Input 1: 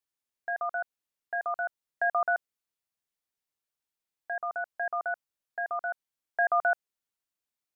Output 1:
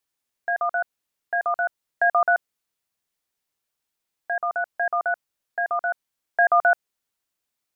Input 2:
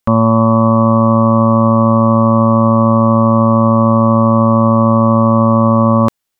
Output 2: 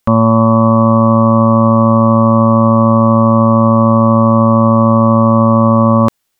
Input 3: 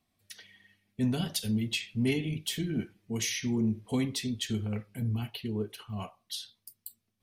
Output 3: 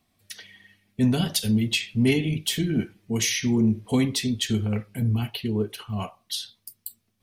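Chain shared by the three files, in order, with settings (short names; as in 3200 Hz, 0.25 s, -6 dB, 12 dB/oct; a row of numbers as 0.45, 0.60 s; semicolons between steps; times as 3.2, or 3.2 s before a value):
limiter -9 dBFS; gain +7.5 dB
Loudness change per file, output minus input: +7.5, +1.0, +7.5 LU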